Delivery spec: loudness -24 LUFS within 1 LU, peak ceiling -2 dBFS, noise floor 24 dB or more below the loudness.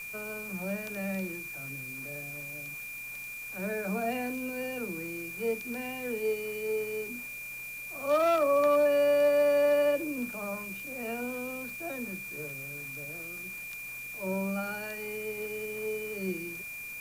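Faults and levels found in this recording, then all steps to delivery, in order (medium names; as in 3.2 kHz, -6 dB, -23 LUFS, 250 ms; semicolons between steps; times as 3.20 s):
steady tone 2.4 kHz; tone level -39 dBFS; noise floor -41 dBFS; noise floor target -56 dBFS; loudness -31.5 LUFS; peak level -16.0 dBFS; loudness target -24.0 LUFS
-> band-stop 2.4 kHz, Q 30; noise reduction 15 dB, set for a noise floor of -41 dBFS; trim +7.5 dB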